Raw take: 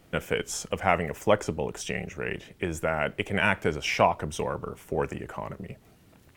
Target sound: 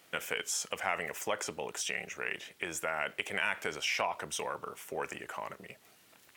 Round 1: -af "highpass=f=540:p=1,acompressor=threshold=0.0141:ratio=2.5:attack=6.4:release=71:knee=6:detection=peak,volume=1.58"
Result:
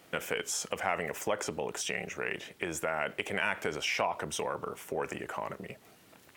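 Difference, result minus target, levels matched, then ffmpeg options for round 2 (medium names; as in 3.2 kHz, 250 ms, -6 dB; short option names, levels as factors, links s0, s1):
500 Hz band +3.0 dB
-af "highpass=f=1600:p=1,acompressor=threshold=0.0141:ratio=2.5:attack=6.4:release=71:knee=6:detection=peak,volume=1.58"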